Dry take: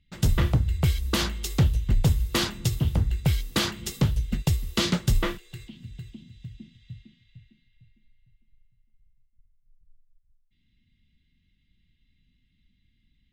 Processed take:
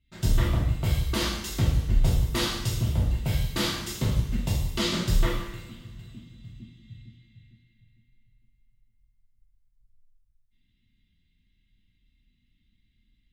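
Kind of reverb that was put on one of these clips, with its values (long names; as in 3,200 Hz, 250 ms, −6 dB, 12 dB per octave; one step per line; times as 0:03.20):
coupled-rooms reverb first 0.83 s, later 2.4 s, from −18 dB, DRR −6 dB
level −8 dB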